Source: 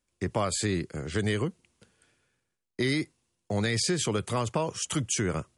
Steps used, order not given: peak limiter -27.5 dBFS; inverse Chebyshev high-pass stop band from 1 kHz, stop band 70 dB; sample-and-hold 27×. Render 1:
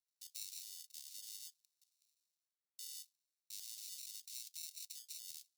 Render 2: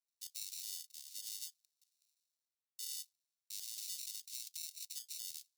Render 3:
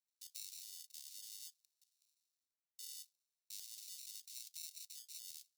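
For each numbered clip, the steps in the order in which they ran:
sample-and-hold > peak limiter > inverse Chebyshev high-pass; sample-and-hold > inverse Chebyshev high-pass > peak limiter; peak limiter > sample-and-hold > inverse Chebyshev high-pass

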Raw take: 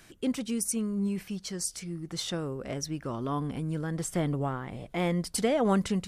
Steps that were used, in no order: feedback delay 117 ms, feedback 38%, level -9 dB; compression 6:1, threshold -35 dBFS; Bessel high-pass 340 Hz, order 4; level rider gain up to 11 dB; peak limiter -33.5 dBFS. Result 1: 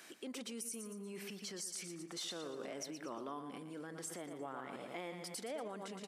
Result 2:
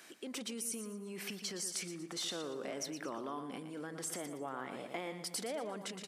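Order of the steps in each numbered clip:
level rider > feedback delay > compression > peak limiter > Bessel high-pass; peak limiter > level rider > feedback delay > compression > Bessel high-pass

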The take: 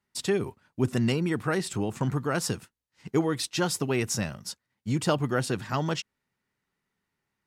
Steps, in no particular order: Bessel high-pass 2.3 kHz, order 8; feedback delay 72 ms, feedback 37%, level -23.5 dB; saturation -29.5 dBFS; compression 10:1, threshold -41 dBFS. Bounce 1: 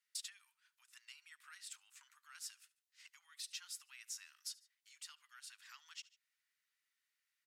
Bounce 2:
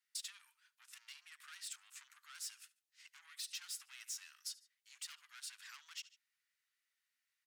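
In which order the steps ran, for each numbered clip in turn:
feedback delay > compression > saturation > Bessel high-pass; feedback delay > saturation > compression > Bessel high-pass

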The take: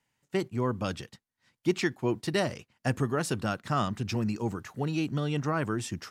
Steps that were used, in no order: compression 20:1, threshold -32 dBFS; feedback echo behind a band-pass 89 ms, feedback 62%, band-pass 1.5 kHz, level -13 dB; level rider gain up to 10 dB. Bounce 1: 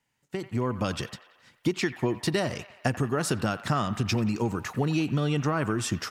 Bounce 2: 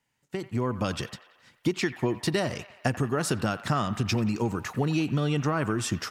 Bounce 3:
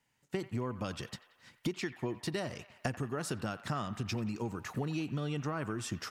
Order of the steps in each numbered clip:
compression > feedback echo behind a band-pass > level rider; compression > level rider > feedback echo behind a band-pass; level rider > compression > feedback echo behind a band-pass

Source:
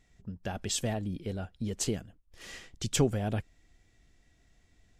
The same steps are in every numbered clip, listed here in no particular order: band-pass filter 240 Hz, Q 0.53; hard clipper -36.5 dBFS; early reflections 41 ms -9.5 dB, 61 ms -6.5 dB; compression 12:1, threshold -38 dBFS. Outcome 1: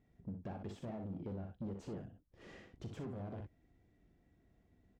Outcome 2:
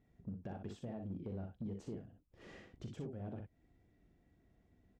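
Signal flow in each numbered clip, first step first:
hard clipper > early reflections > compression > band-pass filter; compression > early reflections > hard clipper > band-pass filter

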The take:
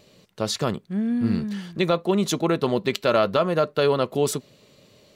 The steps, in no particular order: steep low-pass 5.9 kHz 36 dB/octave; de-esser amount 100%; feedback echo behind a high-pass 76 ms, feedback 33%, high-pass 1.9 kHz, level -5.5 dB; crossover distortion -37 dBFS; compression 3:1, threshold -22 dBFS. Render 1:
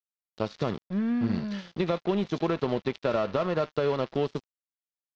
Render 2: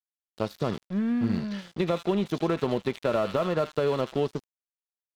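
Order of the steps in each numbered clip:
de-esser > compression > feedback echo behind a high-pass > crossover distortion > steep low-pass; feedback echo behind a high-pass > de-esser > steep low-pass > crossover distortion > compression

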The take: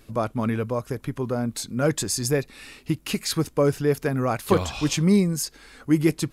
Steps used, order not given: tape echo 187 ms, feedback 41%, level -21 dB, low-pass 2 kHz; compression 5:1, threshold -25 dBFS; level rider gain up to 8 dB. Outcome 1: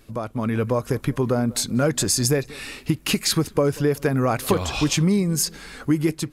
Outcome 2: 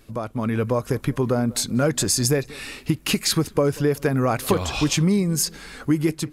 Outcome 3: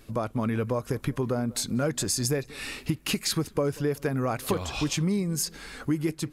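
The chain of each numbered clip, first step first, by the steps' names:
compression > tape echo > level rider; compression > level rider > tape echo; level rider > compression > tape echo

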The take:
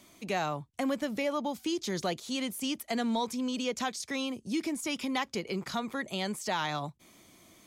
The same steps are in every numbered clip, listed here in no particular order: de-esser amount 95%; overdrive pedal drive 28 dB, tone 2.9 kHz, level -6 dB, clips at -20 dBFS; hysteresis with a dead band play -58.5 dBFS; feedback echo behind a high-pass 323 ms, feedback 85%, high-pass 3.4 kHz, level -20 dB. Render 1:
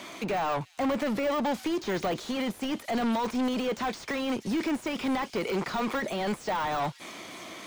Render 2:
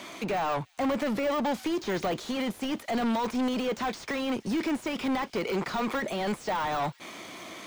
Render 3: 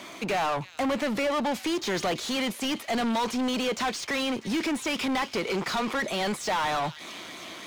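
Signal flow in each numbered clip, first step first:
hysteresis with a dead band > overdrive pedal > feedback echo behind a high-pass > de-esser; hysteresis with a dead band > overdrive pedal > de-esser > feedback echo behind a high-pass; de-esser > feedback echo behind a high-pass > hysteresis with a dead band > overdrive pedal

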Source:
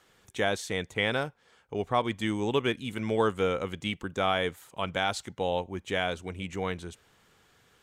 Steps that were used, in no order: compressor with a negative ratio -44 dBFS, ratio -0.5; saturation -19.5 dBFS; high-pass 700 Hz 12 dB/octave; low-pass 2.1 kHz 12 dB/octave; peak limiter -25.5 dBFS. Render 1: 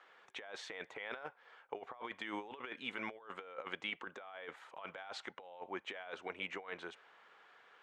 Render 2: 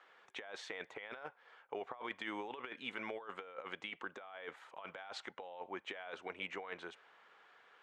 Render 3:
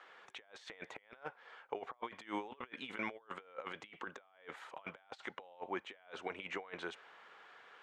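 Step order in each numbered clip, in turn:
high-pass > peak limiter > saturation > low-pass > compressor with a negative ratio; low-pass > peak limiter > high-pass > compressor with a negative ratio > saturation; high-pass > compressor with a negative ratio > saturation > peak limiter > low-pass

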